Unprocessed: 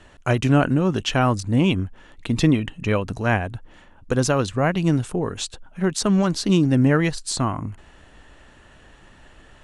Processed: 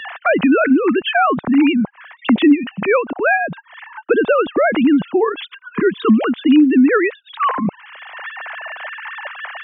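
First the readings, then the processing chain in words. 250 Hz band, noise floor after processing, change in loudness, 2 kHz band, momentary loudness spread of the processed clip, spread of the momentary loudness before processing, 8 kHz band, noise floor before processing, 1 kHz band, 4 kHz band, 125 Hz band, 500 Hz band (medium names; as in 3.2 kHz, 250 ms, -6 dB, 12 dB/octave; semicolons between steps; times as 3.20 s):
+7.0 dB, -48 dBFS, +5.5 dB, +9.5 dB, 16 LU, 12 LU, under -40 dB, -50 dBFS, +7.5 dB, +1.0 dB, -12.0 dB, +7.5 dB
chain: formants replaced by sine waves; spectral selection erased 5.49–6.19 s, 470–990 Hz; three bands compressed up and down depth 70%; trim +6.5 dB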